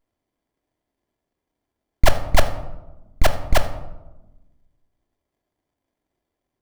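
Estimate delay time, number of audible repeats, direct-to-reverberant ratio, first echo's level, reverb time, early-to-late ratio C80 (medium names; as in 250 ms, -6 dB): no echo, no echo, 5.0 dB, no echo, 1.1 s, 13.5 dB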